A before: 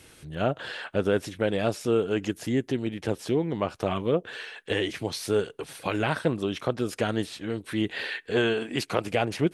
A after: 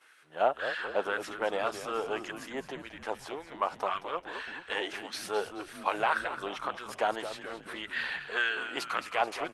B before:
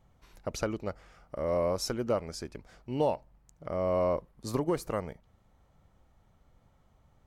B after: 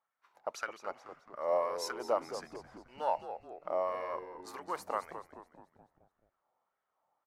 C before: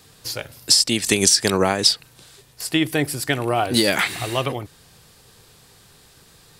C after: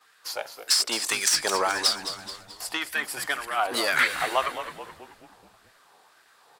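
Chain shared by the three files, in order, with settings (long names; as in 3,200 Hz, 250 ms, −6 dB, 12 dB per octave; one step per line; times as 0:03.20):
one-sided soft clipper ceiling −12 dBFS
noise gate −56 dBFS, range −9 dB
tilt shelving filter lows +5.5 dB, about 700 Hz
auto-filter high-pass sine 1.8 Hz 790–1,600 Hz
echo with shifted repeats 215 ms, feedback 51%, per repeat −92 Hz, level −10.5 dB
one half of a high-frequency compander decoder only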